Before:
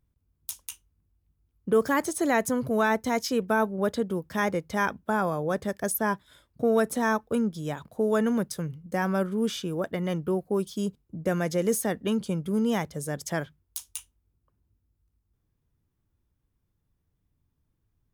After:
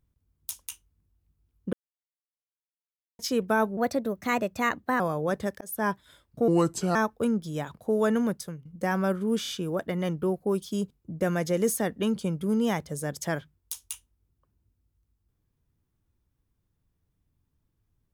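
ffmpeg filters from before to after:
ffmpeg -i in.wav -filter_complex "[0:a]asplit=11[link_01][link_02][link_03][link_04][link_05][link_06][link_07][link_08][link_09][link_10][link_11];[link_01]atrim=end=1.73,asetpts=PTS-STARTPTS,afade=type=out:start_time=1.726:duration=0.004:curve=hsin[link_12];[link_02]atrim=start=1.73:end=3.19,asetpts=PTS-STARTPTS,volume=0[link_13];[link_03]atrim=start=3.19:end=3.774,asetpts=PTS-STARTPTS,afade=type=in:duration=0.004:curve=hsin[link_14];[link_04]atrim=start=3.77:end=5.22,asetpts=PTS-STARTPTS,asetrate=52038,aresample=44100[link_15];[link_05]atrim=start=5.216:end=5.83,asetpts=PTS-STARTPTS,afade=type=out:start_time=0.61:duration=0.004:curve=hsin[link_16];[link_06]atrim=start=5.83:end=6.704,asetpts=PTS-STARTPTS,afade=type=in:duration=0.26[link_17];[link_07]atrim=start=6.7:end=7.06,asetpts=PTS-STARTPTS,asetrate=33516,aresample=44100,atrim=end_sample=20889,asetpts=PTS-STARTPTS[link_18];[link_08]atrim=start=7.056:end=8.76,asetpts=PTS-STARTPTS,afade=type=out:start_time=1.184:duration=0.52:curve=qsin:silence=0.149624[link_19];[link_09]atrim=start=8.76:end=9.562,asetpts=PTS-STARTPTS,afade=type=in:duration=0.004:curve=hsin:silence=0.149624[link_20];[link_10]atrim=start=9.528:end=9.562[link_21];[link_11]atrim=start=9.528[link_22];[link_12][link_13][link_14]concat=n=3:v=0:a=1[link_23];[link_23][link_15]acrossfade=duration=0.004:curve1=hsin:curve2=hsin[link_24];[link_16][link_17]concat=n=2:v=0:a=1[link_25];[link_24][link_25]acrossfade=duration=0.004:curve1=hsin:curve2=hsin[link_26];[link_26][link_18]acrossfade=duration=0.004:curve1=hsin:curve2=hsin[link_27];[link_19][link_20]concat=n=2:v=0:a=1[link_28];[link_27][link_28]acrossfade=duration=0.004:curve1=hsin:curve2=hsin[link_29];[link_29][link_21]acrossfade=duration=0.004:curve1=hsin:curve2=hsin[link_30];[link_30][link_22]acrossfade=duration=0.004:curve1=hsin:curve2=hsin" out.wav

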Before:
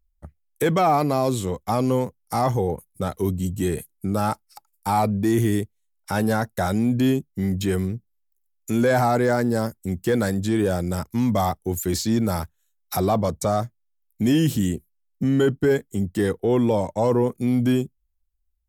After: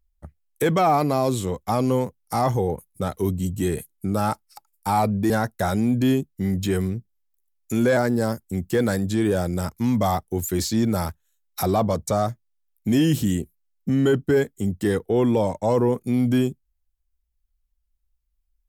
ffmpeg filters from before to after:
ffmpeg -i in.wav -filter_complex "[0:a]asplit=3[link_01][link_02][link_03];[link_01]atrim=end=5.302[link_04];[link_02]atrim=start=6.278:end=8.952[link_05];[link_03]atrim=start=9.308[link_06];[link_04][link_05]acrossfade=duration=0.004:curve1=hsin:curve2=hsin[link_07];[link_07][link_06]acrossfade=duration=0.004:curve1=hsin:curve2=hsin" out.wav

